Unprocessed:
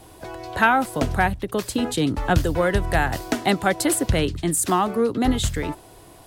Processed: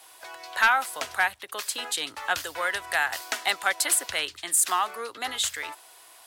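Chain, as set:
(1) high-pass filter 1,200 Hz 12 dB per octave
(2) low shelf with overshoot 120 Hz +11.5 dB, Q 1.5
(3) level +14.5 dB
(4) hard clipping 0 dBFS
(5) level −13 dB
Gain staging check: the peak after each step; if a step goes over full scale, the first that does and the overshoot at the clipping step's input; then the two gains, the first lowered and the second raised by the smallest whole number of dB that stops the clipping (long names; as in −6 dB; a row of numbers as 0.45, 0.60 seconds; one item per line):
−8.0, −8.0, +6.5, 0.0, −13.0 dBFS
step 3, 6.5 dB
step 3 +7.5 dB, step 5 −6 dB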